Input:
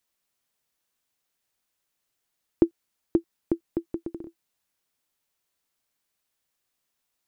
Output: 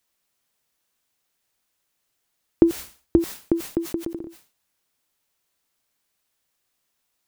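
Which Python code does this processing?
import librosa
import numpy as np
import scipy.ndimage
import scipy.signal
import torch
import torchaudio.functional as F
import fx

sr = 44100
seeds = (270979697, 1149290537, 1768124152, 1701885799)

y = fx.peak_eq(x, sr, hz=61.0, db=11.0, octaves=1.3, at=(2.63, 3.19))
y = fx.sustainer(y, sr, db_per_s=150.0)
y = F.gain(torch.from_numpy(y), 4.5).numpy()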